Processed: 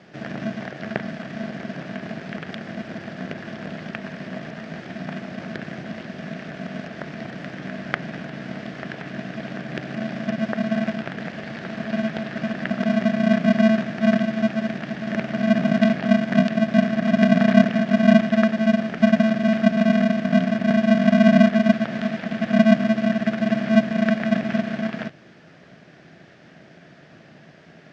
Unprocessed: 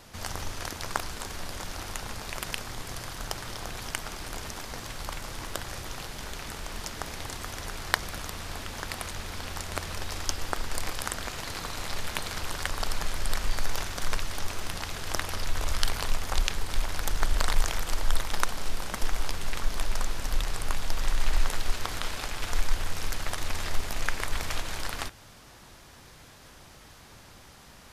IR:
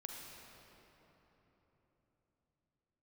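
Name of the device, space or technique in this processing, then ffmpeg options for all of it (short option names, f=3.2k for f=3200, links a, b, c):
ring modulator pedal into a guitar cabinet: -filter_complex "[0:a]acrossover=split=3700[a][b];[b]acompressor=threshold=-44dB:ratio=4:attack=1:release=60[c];[a][c]amix=inputs=2:normalize=0,aeval=exprs='val(0)*sgn(sin(2*PI*220*n/s))':c=same,highpass=110,equalizer=f=380:t=q:w=4:g=3,equalizer=f=650:t=q:w=4:g=8,equalizer=f=1.7k:t=q:w=4:g=7,lowpass=f=4.6k:w=0.5412,lowpass=f=4.6k:w=1.3066,equalizer=f=160:t=o:w=0.67:g=9,equalizer=f=1k:t=o:w=0.67:g=-9,equalizer=f=4k:t=o:w=0.67:g=-7,volume=1.5dB"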